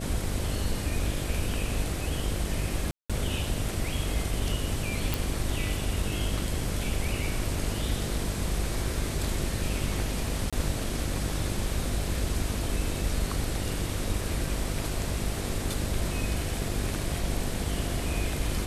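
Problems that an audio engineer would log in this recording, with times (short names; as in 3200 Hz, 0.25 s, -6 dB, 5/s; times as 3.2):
buzz 50 Hz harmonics 13 -34 dBFS
2.91–3.1 gap 0.186 s
5.14 pop
10.5–10.53 gap 26 ms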